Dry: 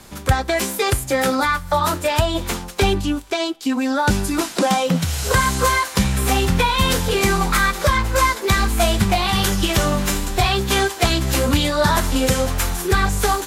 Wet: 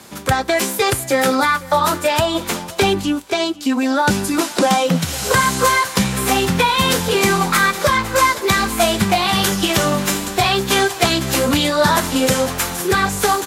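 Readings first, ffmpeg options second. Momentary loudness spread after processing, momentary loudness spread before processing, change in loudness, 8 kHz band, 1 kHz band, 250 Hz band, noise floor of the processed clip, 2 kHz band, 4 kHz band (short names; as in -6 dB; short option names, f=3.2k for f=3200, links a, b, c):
5 LU, 4 LU, +2.5 dB, +3.0 dB, +3.0 dB, +2.5 dB, -31 dBFS, +3.0 dB, +3.0 dB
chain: -filter_complex "[0:a]highpass=140,asplit=2[a][b];[b]aecho=0:1:502:0.0944[c];[a][c]amix=inputs=2:normalize=0,volume=3dB"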